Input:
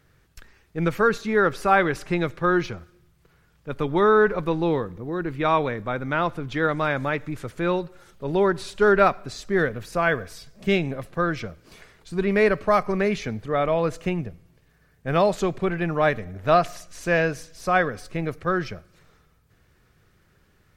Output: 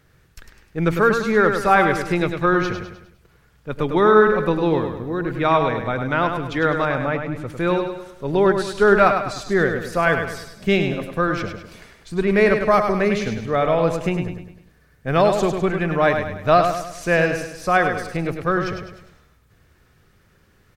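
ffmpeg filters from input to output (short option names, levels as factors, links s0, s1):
-filter_complex "[0:a]asettb=1/sr,asplit=3[s0][s1][s2];[s0]atrim=end=6.854[s3];[s1]atrim=start=6.85:end=7.5,asetpts=PTS-STARTPTS,afade=t=in:d=0.004:c=qsin,afade=t=out:st=0.646:d=0.004:c=qsin,highshelf=f=2500:g=-10[s4];[s2]atrim=start=7.496[s5];[s3][s4]acrossfade=d=0.004:c1=hsin:c2=qsin[s6];[s6][s5]acrossfade=d=0.004:c1=qsin:c2=hsin,asplit=2[s7][s8];[s8]aecho=0:1:102|204|306|408|510:0.473|0.208|0.0916|0.0403|0.0177[s9];[s7][s9]amix=inputs=2:normalize=0,volume=1.41"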